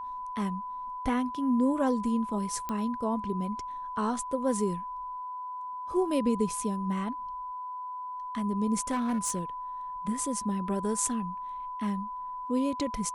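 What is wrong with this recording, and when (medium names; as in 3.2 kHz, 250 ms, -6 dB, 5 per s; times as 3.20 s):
whine 1 kHz -35 dBFS
2.69 s: pop -19 dBFS
8.90–9.41 s: clipped -24.5 dBFS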